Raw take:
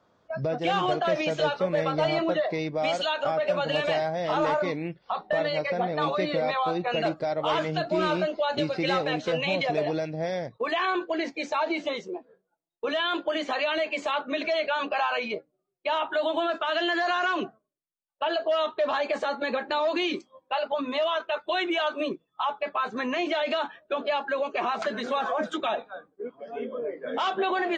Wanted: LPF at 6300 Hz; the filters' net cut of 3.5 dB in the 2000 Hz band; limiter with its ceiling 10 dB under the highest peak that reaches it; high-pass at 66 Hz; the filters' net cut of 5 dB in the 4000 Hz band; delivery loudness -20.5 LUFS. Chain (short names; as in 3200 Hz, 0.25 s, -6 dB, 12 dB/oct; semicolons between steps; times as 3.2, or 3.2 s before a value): HPF 66 Hz; LPF 6300 Hz; bell 2000 Hz -3.5 dB; bell 4000 Hz -5 dB; gain +13.5 dB; limiter -12 dBFS